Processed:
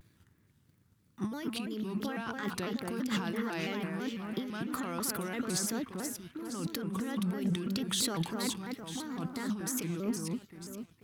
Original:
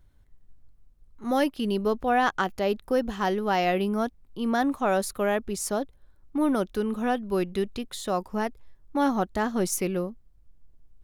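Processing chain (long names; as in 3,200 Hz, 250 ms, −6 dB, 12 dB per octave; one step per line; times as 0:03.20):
parametric band 660 Hz −13.5 dB 0.98 octaves
compressor whose output falls as the input rises −39 dBFS, ratio −1
high-pass filter 110 Hz 24 dB per octave
on a send: delay that swaps between a low-pass and a high-pass 238 ms, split 2,200 Hz, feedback 67%, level −3.5 dB
on the sum: leveller curve on the samples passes 1
pitch modulation by a square or saw wave square 3 Hz, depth 160 cents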